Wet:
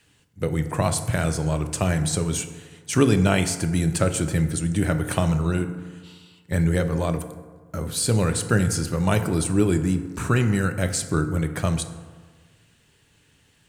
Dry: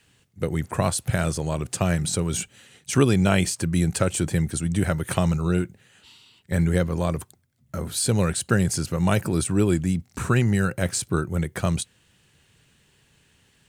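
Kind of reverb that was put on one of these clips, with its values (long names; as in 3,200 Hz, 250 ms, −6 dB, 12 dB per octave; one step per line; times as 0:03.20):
feedback delay network reverb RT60 1.5 s, low-frequency decay 1×, high-frequency decay 0.45×, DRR 7.5 dB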